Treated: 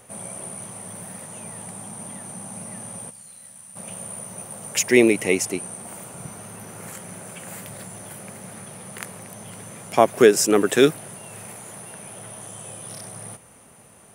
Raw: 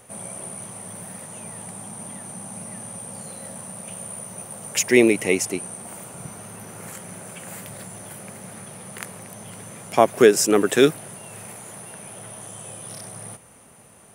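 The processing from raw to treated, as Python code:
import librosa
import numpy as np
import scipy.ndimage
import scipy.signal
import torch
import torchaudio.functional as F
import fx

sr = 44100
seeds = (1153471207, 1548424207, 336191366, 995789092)

y = fx.tone_stack(x, sr, knobs='5-5-5', at=(3.09, 3.75), fade=0.02)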